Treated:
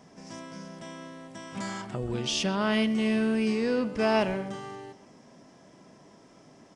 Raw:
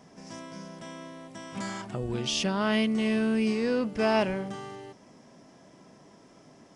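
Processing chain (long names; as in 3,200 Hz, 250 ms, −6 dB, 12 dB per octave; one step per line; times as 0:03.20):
downsampling to 22,050 Hz
far-end echo of a speakerphone 130 ms, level −13 dB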